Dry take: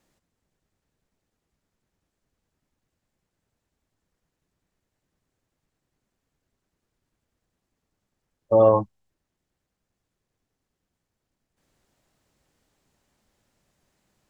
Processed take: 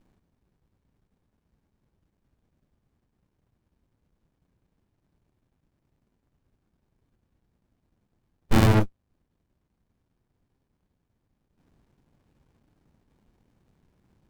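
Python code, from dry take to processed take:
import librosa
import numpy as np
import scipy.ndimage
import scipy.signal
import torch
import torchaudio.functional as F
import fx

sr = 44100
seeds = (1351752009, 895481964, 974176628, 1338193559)

p1 = fx.sample_hold(x, sr, seeds[0], rate_hz=1200.0, jitter_pct=0)
p2 = x + (p1 * librosa.db_to_amplitude(-11.0))
p3 = fx.running_max(p2, sr, window=65)
y = p3 * librosa.db_to_amplitude(7.0)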